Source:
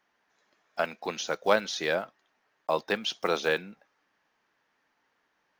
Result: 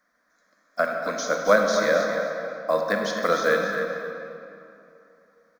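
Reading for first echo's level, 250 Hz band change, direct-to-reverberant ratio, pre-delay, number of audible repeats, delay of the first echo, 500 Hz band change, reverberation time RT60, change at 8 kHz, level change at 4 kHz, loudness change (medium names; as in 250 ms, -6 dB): -9.5 dB, +7.0 dB, 1.0 dB, 30 ms, 1, 267 ms, +8.0 dB, 2.9 s, +6.0 dB, -0.5 dB, +5.5 dB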